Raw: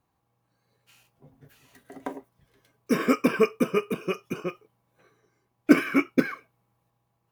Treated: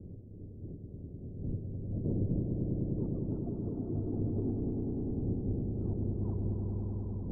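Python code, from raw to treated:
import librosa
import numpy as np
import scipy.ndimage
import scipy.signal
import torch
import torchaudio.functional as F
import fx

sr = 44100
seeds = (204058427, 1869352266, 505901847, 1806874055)

y = fx.pitch_ramps(x, sr, semitones=-11.0, every_ms=175)
y = fx.dmg_wind(y, sr, seeds[0], corner_hz=250.0, level_db=-45.0)
y = fx.peak_eq(y, sr, hz=100.0, db=9.5, octaves=0.32)
y = fx.over_compress(y, sr, threshold_db=-35.0, ratio=-1.0)
y = scipy.signal.sosfilt(scipy.signal.cheby2(4, 70, 2100.0, 'lowpass', fs=sr, output='sos'), y)
y = fx.echo_swell(y, sr, ms=101, loudest=5, wet_db=-6.5)
y = y * 10.0 ** (-2.5 / 20.0)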